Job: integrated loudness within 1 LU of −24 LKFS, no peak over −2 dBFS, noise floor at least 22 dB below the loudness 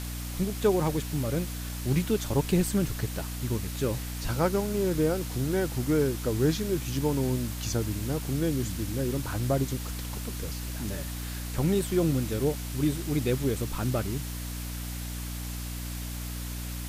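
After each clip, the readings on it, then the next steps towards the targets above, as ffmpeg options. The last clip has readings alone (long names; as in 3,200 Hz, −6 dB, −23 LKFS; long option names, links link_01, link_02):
mains hum 60 Hz; hum harmonics up to 300 Hz; level of the hum −34 dBFS; background noise floor −35 dBFS; target noise floor −52 dBFS; integrated loudness −29.5 LKFS; sample peak −11.5 dBFS; target loudness −24.0 LKFS
→ -af "bandreject=frequency=60:width_type=h:width=6,bandreject=frequency=120:width_type=h:width=6,bandreject=frequency=180:width_type=h:width=6,bandreject=frequency=240:width_type=h:width=6,bandreject=frequency=300:width_type=h:width=6"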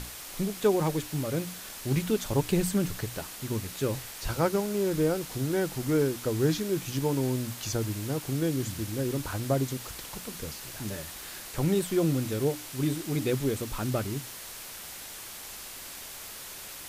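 mains hum none found; background noise floor −43 dBFS; target noise floor −53 dBFS
→ -af "afftdn=noise_reduction=10:noise_floor=-43"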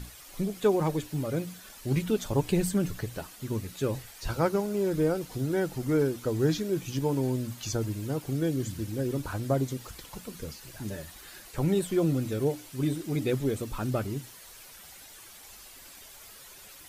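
background noise floor −49 dBFS; target noise floor −52 dBFS
→ -af "afftdn=noise_reduction=6:noise_floor=-49"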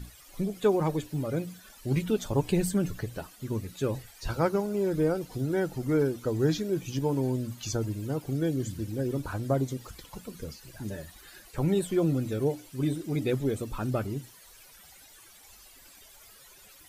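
background noise floor −54 dBFS; integrated loudness −30.0 LKFS; sample peak −12.5 dBFS; target loudness −24.0 LKFS
→ -af "volume=6dB"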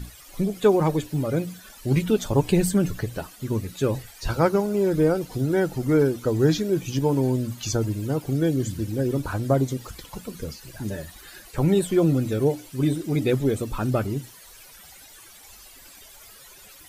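integrated loudness −24.0 LKFS; sample peak −6.5 dBFS; background noise floor −48 dBFS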